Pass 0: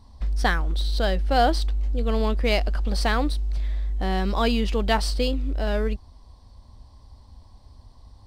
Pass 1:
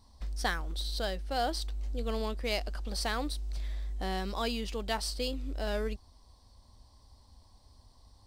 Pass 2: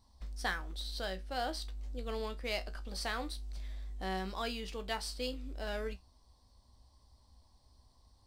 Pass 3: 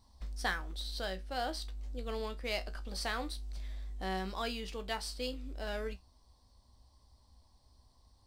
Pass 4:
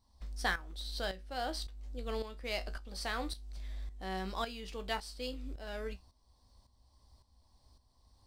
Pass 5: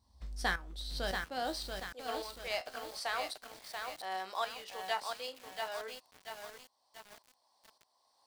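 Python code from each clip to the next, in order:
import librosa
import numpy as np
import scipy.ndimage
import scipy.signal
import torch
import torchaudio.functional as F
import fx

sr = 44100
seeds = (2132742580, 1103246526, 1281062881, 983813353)

y1 = fx.bass_treble(x, sr, bass_db=-4, treble_db=8)
y1 = fx.rider(y1, sr, range_db=3, speed_s=0.5)
y1 = y1 * librosa.db_to_amplitude(-9.0)
y2 = fx.comb_fb(y1, sr, f0_hz=63.0, decay_s=0.19, harmonics='all', damping=0.0, mix_pct=70)
y2 = fx.dynamic_eq(y2, sr, hz=1800.0, q=0.84, threshold_db=-51.0, ratio=4.0, max_db=4)
y2 = y2 * librosa.db_to_amplitude(-2.0)
y3 = fx.rider(y2, sr, range_db=4, speed_s=2.0)
y4 = fx.tremolo_shape(y3, sr, shape='saw_up', hz=1.8, depth_pct=70)
y4 = y4 * librosa.db_to_amplitude(2.0)
y5 = fx.filter_sweep_highpass(y4, sr, from_hz=62.0, to_hz=690.0, start_s=1.09, end_s=1.67, q=1.4)
y5 = fx.echo_crushed(y5, sr, ms=684, feedback_pct=55, bits=8, wet_db=-4)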